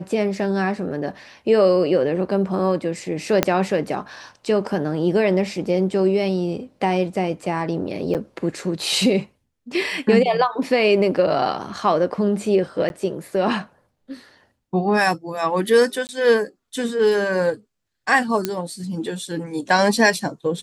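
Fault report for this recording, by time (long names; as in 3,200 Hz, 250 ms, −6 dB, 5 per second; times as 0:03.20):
0:03.43: click −1 dBFS
0:08.14–0:08.15: drop-out 8.1 ms
0:12.89–0:12.90: drop-out 11 ms
0:16.07–0:16.09: drop-out 19 ms
0:18.45: click −6 dBFS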